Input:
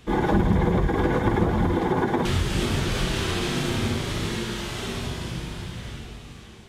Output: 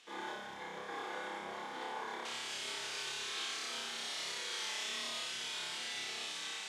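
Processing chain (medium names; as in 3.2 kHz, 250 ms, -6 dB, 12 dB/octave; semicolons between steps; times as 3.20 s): treble shelf 2.1 kHz +11.5 dB; reverse; compression 12:1, threshold -34 dBFS, peak gain reduction 19.5 dB; reverse; peak limiter -30.5 dBFS, peak gain reduction 6.5 dB; band-pass 600–7800 Hz; on a send: flutter echo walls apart 5.1 m, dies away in 0.96 s; on the sum: trim -2.5 dB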